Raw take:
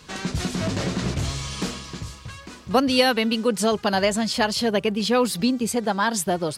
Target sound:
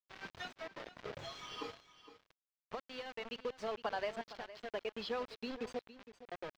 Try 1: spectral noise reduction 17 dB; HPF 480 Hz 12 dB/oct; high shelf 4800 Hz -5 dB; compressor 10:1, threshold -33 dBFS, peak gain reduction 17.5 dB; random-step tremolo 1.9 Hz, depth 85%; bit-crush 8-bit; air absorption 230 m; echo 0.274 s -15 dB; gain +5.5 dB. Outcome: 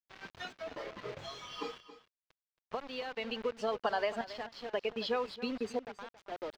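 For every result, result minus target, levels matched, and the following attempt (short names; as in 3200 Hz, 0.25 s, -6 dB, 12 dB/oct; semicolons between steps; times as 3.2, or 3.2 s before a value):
echo 0.188 s early; compressor: peak gain reduction -6 dB
spectral noise reduction 17 dB; HPF 480 Hz 12 dB/oct; high shelf 4800 Hz -5 dB; compressor 10:1, threshold -33 dBFS, peak gain reduction 17.5 dB; random-step tremolo 1.9 Hz, depth 85%; bit-crush 8-bit; air absorption 230 m; echo 0.462 s -15 dB; gain +5.5 dB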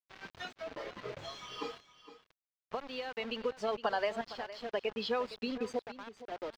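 compressor: peak gain reduction -6 dB
spectral noise reduction 17 dB; HPF 480 Hz 12 dB/oct; high shelf 4800 Hz -5 dB; compressor 10:1, threshold -39.5 dBFS, peak gain reduction 23.5 dB; random-step tremolo 1.9 Hz, depth 85%; bit-crush 8-bit; air absorption 230 m; echo 0.462 s -15 dB; gain +5.5 dB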